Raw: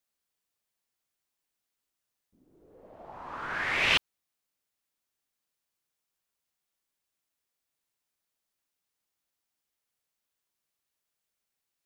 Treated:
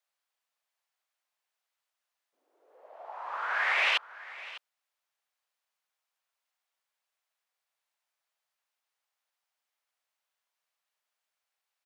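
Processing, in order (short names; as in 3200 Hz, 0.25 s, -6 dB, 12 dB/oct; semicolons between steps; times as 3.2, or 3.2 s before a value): HPF 600 Hz 24 dB/oct; high shelf 4700 Hz -11 dB; limiter -21.5 dBFS, peak gain reduction 7.5 dB; echo 0.602 s -17.5 dB; gain +4.5 dB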